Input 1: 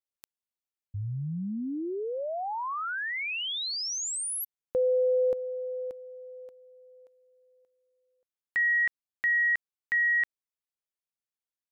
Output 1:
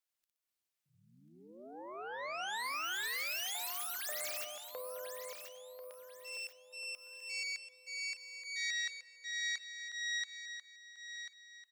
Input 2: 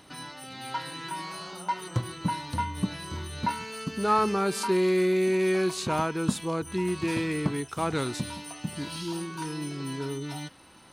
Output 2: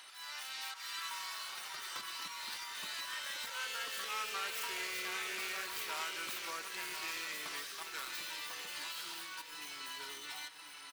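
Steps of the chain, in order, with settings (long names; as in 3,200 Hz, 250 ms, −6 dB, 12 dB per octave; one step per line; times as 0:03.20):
stylus tracing distortion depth 0.26 ms
high-pass filter 1,400 Hz 12 dB per octave
volume swells 243 ms
downward compressor 2 to 1, threshold −51 dBFS
repeating echo 1,041 ms, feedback 32%, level −9 dB
rectangular room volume 1,800 cubic metres, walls mixed, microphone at 0.38 metres
delay with pitch and tempo change per echo 96 ms, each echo +3 semitones, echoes 2
level +4 dB
Nellymoser 88 kbit/s 44,100 Hz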